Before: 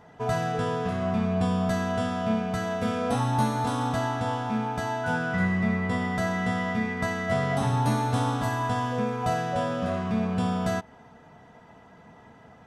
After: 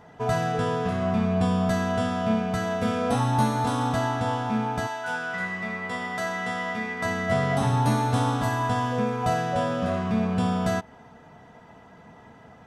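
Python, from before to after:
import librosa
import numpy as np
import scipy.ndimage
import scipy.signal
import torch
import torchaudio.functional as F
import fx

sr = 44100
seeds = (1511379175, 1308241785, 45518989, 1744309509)

y = fx.highpass(x, sr, hz=fx.line((4.86, 1200.0), (7.04, 450.0)), slope=6, at=(4.86, 7.04), fade=0.02)
y = y * 10.0 ** (2.0 / 20.0)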